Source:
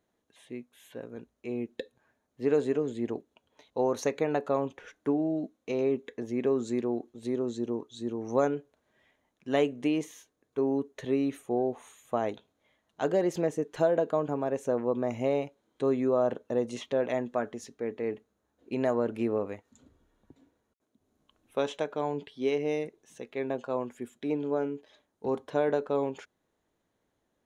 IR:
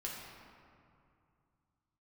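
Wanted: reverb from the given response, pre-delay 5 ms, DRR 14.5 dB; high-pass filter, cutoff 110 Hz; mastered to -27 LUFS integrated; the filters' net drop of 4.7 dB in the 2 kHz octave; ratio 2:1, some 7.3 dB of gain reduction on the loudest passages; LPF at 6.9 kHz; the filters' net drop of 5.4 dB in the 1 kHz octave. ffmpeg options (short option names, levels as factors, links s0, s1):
-filter_complex "[0:a]highpass=110,lowpass=6900,equalizer=f=1000:t=o:g=-7.5,equalizer=f=2000:t=o:g=-3.5,acompressor=threshold=0.0158:ratio=2,asplit=2[s0][s1];[1:a]atrim=start_sample=2205,adelay=5[s2];[s1][s2]afir=irnorm=-1:irlink=0,volume=0.178[s3];[s0][s3]amix=inputs=2:normalize=0,volume=3.55"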